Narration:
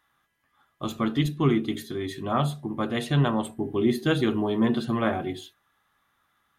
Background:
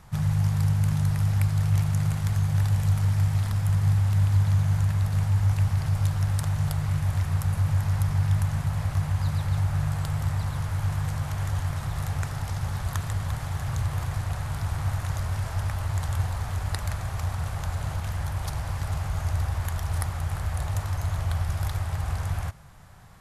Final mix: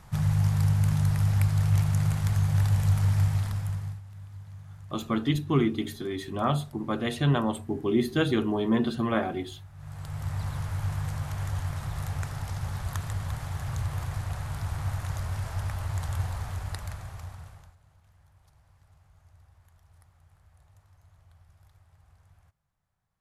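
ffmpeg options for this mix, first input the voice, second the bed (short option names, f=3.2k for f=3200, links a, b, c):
-filter_complex "[0:a]adelay=4100,volume=-1.5dB[a];[1:a]volume=18.5dB,afade=t=out:st=3.21:d=0.8:silence=0.0794328,afade=t=in:st=9.76:d=0.7:silence=0.112202,afade=t=out:st=16.35:d=1.41:silence=0.0421697[b];[a][b]amix=inputs=2:normalize=0"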